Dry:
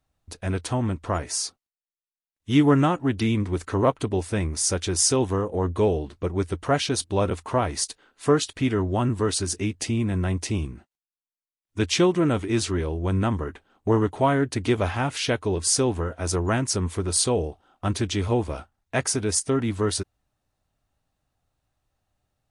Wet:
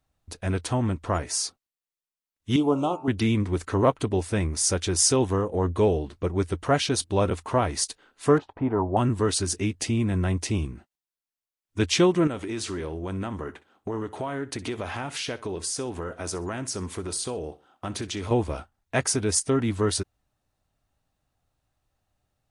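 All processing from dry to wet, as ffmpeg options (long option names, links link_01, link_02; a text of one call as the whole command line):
ffmpeg -i in.wav -filter_complex "[0:a]asettb=1/sr,asplit=3[link_01][link_02][link_03];[link_01]atrim=end=2.564[link_04];[link_02]atrim=start=2.56:end=3.08,asetpts=PTS-STARTPTS,afade=type=in:duration=0.004:curve=qsin,afade=type=out:start_time=0.516:duration=0.004:curve=qsin,asuperstop=centerf=1800:order=4:qfactor=0.83,bass=frequency=250:gain=-14,treble=frequency=4000:gain=-5,bandreject=frequency=81.33:width_type=h:width=4,bandreject=frequency=162.66:width_type=h:width=4,bandreject=frequency=243.99:width_type=h:width=4,bandreject=frequency=325.32:width_type=h:width=4,bandreject=frequency=406.65:width_type=h:width=4,bandreject=frequency=487.98:width_type=h:width=4,bandreject=frequency=569.31:width_type=h:width=4,bandreject=frequency=650.64:width_type=h:width=4,bandreject=frequency=731.97:width_type=h:width=4,bandreject=frequency=813.3:width_type=h:width=4,bandreject=frequency=894.63:width_type=h:width=4,bandreject=frequency=975.96:width_type=h:width=4,bandreject=frequency=1057.29:width_type=h:width=4,bandreject=frequency=1138.62:width_type=h:width=4,bandreject=frequency=1219.95:width_type=h:width=4,bandreject=frequency=1301.28:width_type=h:width=4,bandreject=frequency=1382.61:width_type=h:width=4,bandreject=frequency=1463.94:width_type=h:width=4,bandreject=frequency=1545.27:width_type=h:width=4,bandreject=frequency=1626.6:width_type=h:width=4,bandreject=frequency=1707.93:width_type=h:width=4,bandreject=frequency=1789.26:width_type=h:width=4,bandreject=frequency=1870.59:width_type=h:width=4,bandreject=frequency=1951.92:width_type=h:width=4,bandreject=frequency=2033.25:width_type=h:width=4,bandreject=frequency=2114.58:width_type=h:width=4,bandreject=frequency=2195.91:width_type=h:width=4,bandreject=frequency=2277.24:width_type=h:width=4,bandreject=frequency=2358.57:width_type=h:width=4,bandreject=frequency=2439.9:width_type=h:width=4,bandreject=frequency=2521.23:width_type=h:width=4,bandreject=frequency=2602.56:width_type=h:width=4,bandreject=frequency=2683.89:width_type=h:width=4,bandreject=frequency=2765.22:width_type=h:width=4[link_05];[link_03]atrim=start=3.076[link_06];[link_04][link_05]acrossfade=duration=0.004:curve1=hsin:curve2=qsin[link_07];[link_07][link_06]acrossfade=duration=0.004:curve1=qsin:curve2=hsin,asettb=1/sr,asplit=3[link_08][link_09][link_10];[link_08]atrim=end=8.384[link_11];[link_09]atrim=start=8.38:end=8.97,asetpts=PTS-STARTPTS,afade=type=in:duration=0.004:curve=qsin,afade=type=out:start_time=0.586:duration=0.004:curve=qsin,lowpass=frequency=870:width_type=q:width=4.5,lowshelf=frequency=320:gain=-5[link_12];[link_10]atrim=start=8.966[link_13];[link_11][link_12]acrossfade=duration=0.004:curve1=hsin:curve2=qsin[link_14];[link_14][link_13]acrossfade=duration=0.004:curve1=qsin:curve2=hsin,asettb=1/sr,asplit=3[link_15][link_16][link_17];[link_15]atrim=end=12.274[link_18];[link_16]atrim=start=12.27:end=18.31,asetpts=PTS-STARTPTS,afade=type=in:duration=0.004:curve=qsin,afade=type=out:start_time=6.036:duration=0.004:curve=qsin,highpass=frequency=180:poles=1,acompressor=threshold=-28dB:ratio=4:attack=3.2:release=140:knee=1:detection=peak,aecho=1:1:63|126:0.126|0.0352,atrim=end_sample=266364[link_19];[link_17]atrim=start=18.306[link_20];[link_18][link_19]acrossfade=duration=0.004:curve1=hsin:curve2=qsin[link_21];[link_21][link_20]acrossfade=duration=0.004:curve1=qsin:curve2=hsin" out.wav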